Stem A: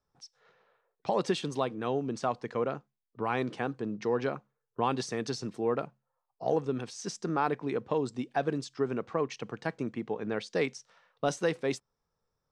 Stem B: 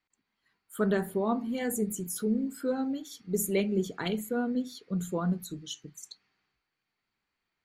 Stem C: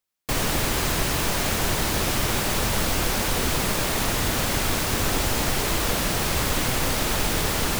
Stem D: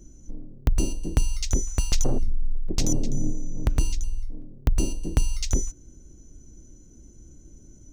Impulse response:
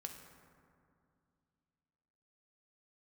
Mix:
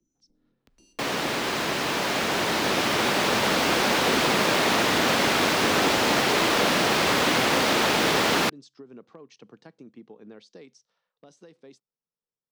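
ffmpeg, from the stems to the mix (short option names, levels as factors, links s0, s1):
-filter_complex "[0:a]equalizer=f=2100:t=o:w=1.6:g=-8.5,acompressor=threshold=0.0282:ratio=10,volume=11.9,asoftclip=hard,volume=0.0841,volume=0.473[s0];[2:a]highpass=62,adelay=700,volume=0.944[s1];[3:a]acrossover=split=310|1900[s2][s3][s4];[s2]acompressor=threshold=0.0398:ratio=4[s5];[s3]acompressor=threshold=0.00794:ratio=4[s6];[s4]acompressor=threshold=0.0178:ratio=4[s7];[s5][s6][s7]amix=inputs=3:normalize=0,acrossover=split=830[s8][s9];[s8]aeval=exprs='val(0)*(1-0.5/2+0.5/2*cos(2*PI*4*n/s))':c=same[s10];[s9]aeval=exprs='val(0)*(1-0.5/2-0.5/2*cos(2*PI*4*n/s))':c=same[s11];[s10][s11]amix=inputs=2:normalize=0,volume=0.15,asplit=2[s12][s13];[s13]volume=0.266[s14];[s0][s12]amix=inputs=2:normalize=0,equalizer=f=750:w=0.41:g=-9.5,alimiter=level_in=5.01:limit=0.0631:level=0:latency=1:release=200,volume=0.2,volume=1[s15];[4:a]atrim=start_sample=2205[s16];[s14][s16]afir=irnorm=-1:irlink=0[s17];[s1][s15][s17]amix=inputs=3:normalize=0,acrossover=split=180 5400:gain=0.0891 1 0.2[s18][s19][s20];[s18][s19][s20]amix=inputs=3:normalize=0,dynaudnorm=f=750:g=7:m=2"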